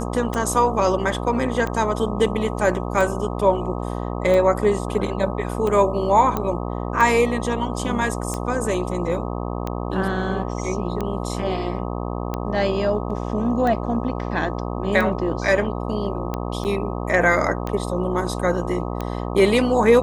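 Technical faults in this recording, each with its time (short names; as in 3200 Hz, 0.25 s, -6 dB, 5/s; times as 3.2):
buzz 60 Hz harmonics 21 -27 dBFS
tick 45 rpm -13 dBFS
6.37 pop -10 dBFS
16.64–16.65 gap 9.1 ms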